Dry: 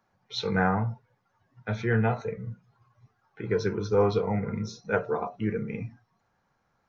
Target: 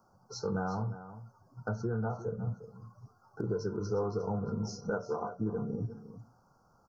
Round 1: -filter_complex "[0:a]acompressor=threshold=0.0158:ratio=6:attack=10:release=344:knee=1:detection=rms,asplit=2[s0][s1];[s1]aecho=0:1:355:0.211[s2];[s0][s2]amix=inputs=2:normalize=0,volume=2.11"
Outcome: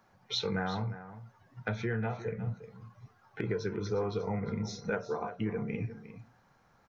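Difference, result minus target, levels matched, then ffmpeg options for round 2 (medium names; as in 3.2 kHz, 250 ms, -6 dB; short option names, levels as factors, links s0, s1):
2 kHz band +6.5 dB
-filter_complex "[0:a]acompressor=threshold=0.0158:ratio=6:attack=10:release=344:knee=1:detection=rms,asuperstop=centerf=2600:order=20:qfactor=0.85,asplit=2[s0][s1];[s1]aecho=0:1:355:0.211[s2];[s0][s2]amix=inputs=2:normalize=0,volume=2.11"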